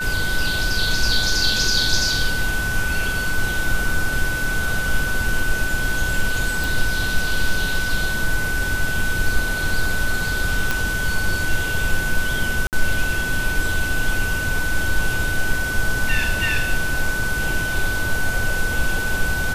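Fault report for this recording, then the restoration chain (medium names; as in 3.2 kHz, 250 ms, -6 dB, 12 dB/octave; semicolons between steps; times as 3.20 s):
whine 1.5 kHz -23 dBFS
6.64 s: pop
10.71 s: pop
12.67–12.73 s: dropout 58 ms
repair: de-click; band-stop 1.5 kHz, Q 30; interpolate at 12.67 s, 58 ms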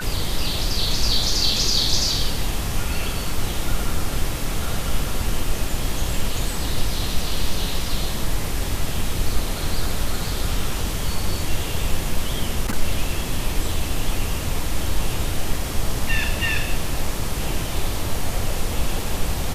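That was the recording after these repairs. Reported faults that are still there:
nothing left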